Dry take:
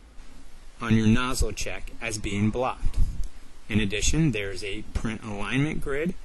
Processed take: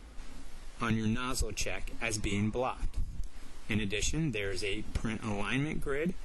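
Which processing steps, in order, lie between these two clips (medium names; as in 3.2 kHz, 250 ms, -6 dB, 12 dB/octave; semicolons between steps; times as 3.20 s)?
compression 6:1, threshold -28 dBFS, peak gain reduction 14 dB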